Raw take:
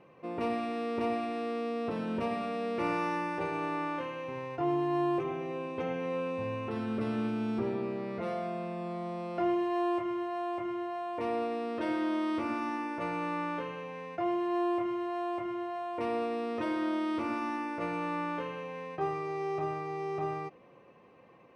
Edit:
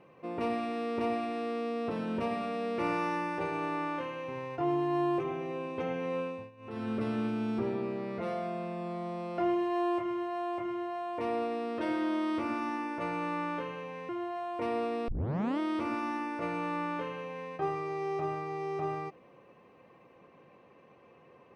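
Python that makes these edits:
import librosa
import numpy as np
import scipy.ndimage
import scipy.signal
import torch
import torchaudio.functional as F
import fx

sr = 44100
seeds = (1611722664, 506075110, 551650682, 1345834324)

y = fx.edit(x, sr, fx.fade_down_up(start_s=6.2, length_s=0.68, db=-21.0, fade_s=0.31),
    fx.cut(start_s=14.09, length_s=1.39),
    fx.tape_start(start_s=16.47, length_s=0.51), tone=tone)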